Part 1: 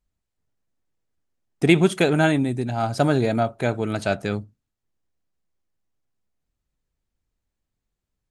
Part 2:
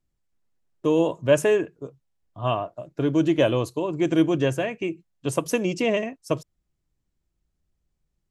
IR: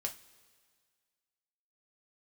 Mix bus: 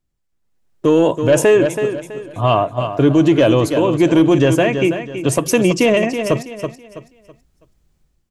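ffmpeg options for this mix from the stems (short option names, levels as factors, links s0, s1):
-filter_complex "[0:a]volume=0.133,asplit=2[s0][s1];[s1]volume=0.447[s2];[1:a]asoftclip=type=tanh:threshold=0.316,dynaudnorm=f=400:g=3:m=4.47,volume=1.26,asplit=3[s3][s4][s5];[s4]volume=0.299[s6];[s5]apad=whole_len=366457[s7];[s0][s7]sidechaingate=range=0.0224:threshold=0.0224:ratio=16:detection=peak[s8];[s2][s6]amix=inputs=2:normalize=0,aecho=0:1:327|654|981|1308:1|0.31|0.0961|0.0298[s9];[s8][s3][s9]amix=inputs=3:normalize=0,alimiter=limit=0.596:level=0:latency=1:release=36"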